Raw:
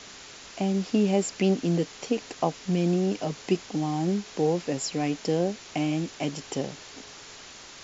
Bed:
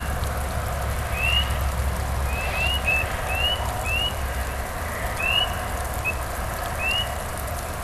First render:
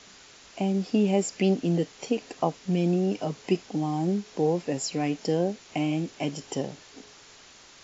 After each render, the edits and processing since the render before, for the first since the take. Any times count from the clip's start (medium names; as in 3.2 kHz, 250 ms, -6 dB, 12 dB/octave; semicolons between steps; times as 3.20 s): noise print and reduce 6 dB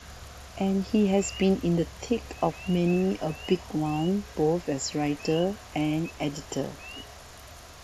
add bed -19 dB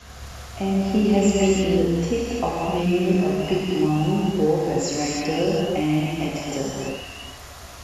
gated-style reverb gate 360 ms flat, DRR -5 dB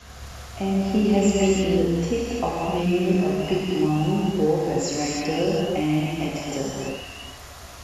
trim -1 dB